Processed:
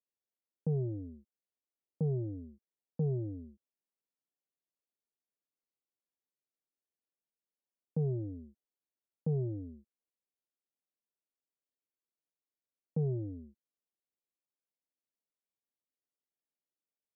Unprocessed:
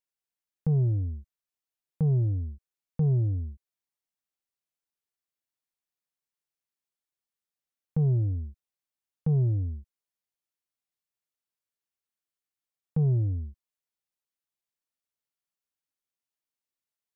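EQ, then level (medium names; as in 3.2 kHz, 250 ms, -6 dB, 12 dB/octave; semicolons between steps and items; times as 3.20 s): Butterworth band-pass 350 Hz, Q 0.78; 0.0 dB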